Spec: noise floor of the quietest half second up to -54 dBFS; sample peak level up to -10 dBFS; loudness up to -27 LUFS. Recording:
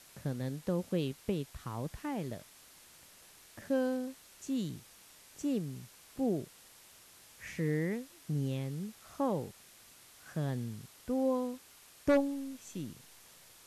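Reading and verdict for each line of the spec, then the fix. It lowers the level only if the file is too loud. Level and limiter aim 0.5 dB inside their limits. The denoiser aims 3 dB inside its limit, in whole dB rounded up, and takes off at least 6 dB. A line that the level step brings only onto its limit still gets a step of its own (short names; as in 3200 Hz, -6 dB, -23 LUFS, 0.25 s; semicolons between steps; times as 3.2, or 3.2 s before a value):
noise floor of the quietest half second -58 dBFS: OK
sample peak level -16.5 dBFS: OK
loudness -36.0 LUFS: OK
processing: none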